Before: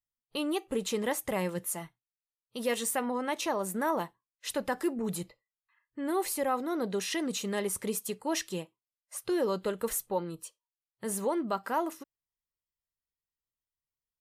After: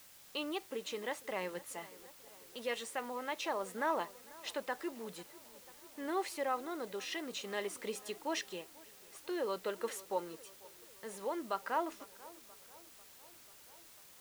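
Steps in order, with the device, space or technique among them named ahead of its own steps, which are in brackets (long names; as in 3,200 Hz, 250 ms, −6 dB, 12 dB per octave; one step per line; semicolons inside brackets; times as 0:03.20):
first-order pre-emphasis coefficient 0.8
tape delay 492 ms, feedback 70%, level −20 dB
shortwave radio (band-pass filter 330–2,800 Hz; amplitude tremolo 0.5 Hz, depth 36%; white noise bed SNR 17 dB)
level +9.5 dB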